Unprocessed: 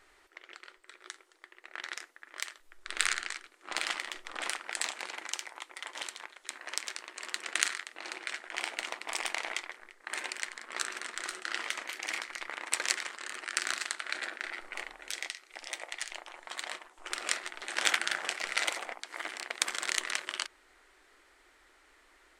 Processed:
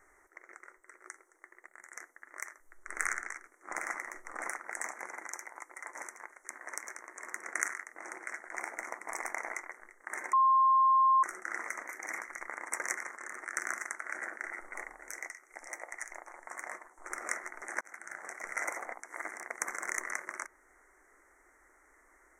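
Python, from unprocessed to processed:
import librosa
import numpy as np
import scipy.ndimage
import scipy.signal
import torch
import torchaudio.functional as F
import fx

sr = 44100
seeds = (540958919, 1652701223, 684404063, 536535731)

y = fx.spec_box(x, sr, start_s=1.67, length_s=0.28, low_hz=210.0, high_hz=6600.0, gain_db=-11)
y = fx.edit(y, sr, fx.bleep(start_s=10.33, length_s=0.9, hz=1060.0, db=-21.0),
    fx.fade_in_span(start_s=17.81, length_s=0.93), tone=tone)
y = scipy.signal.sosfilt(scipy.signal.cheby1(4, 1.0, [2100.0, 5900.0], 'bandstop', fs=sr, output='sos'), y)
y = fx.dynamic_eq(y, sr, hz=8200.0, q=2.0, threshold_db=-55.0, ratio=4.0, max_db=-6)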